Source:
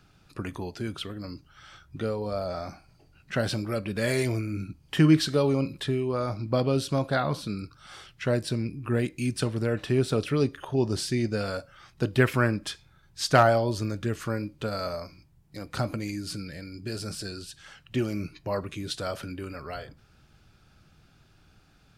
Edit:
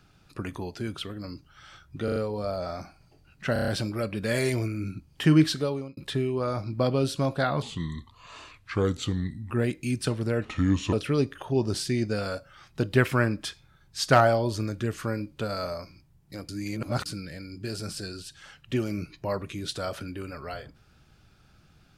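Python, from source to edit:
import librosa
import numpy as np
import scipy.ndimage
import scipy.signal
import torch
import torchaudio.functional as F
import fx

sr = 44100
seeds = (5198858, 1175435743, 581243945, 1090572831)

y = fx.edit(x, sr, fx.stutter(start_s=2.04, slice_s=0.04, count=4),
    fx.stutter(start_s=3.41, slice_s=0.03, count=6),
    fx.fade_out_span(start_s=5.19, length_s=0.51),
    fx.speed_span(start_s=7.35, length_s=1.51, speed=0.8),
    fx.speed_span(start_s=9.8, length_s=0.35, speed=0.73),
    fx.reverse_span(start_s=15.71, length_s=0.57), tone=tone)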